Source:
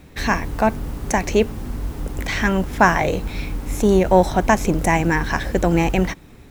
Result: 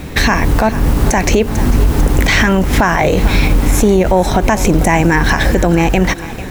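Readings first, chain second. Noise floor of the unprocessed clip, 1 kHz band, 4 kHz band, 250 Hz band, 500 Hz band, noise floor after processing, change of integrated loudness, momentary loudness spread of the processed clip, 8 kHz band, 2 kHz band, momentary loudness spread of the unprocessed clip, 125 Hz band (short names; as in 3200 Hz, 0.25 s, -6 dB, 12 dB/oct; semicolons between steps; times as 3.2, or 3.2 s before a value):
-44 dBFS, +4.5 dB, +11.0 dB, +7.0 dB, +5.0 dB, -25 dBFS, +7.0 dB, 3 LU, +10.0 dB, +7.0 dB, 13 LU, +9.5 dB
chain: compressor 4:1, threshold -24 dBFS, peak gain reduction 13.5 dB; thinning echo 0.446 s, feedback 61%, level -17.5 dB; maximiser +19.5 dB; gain -1 dB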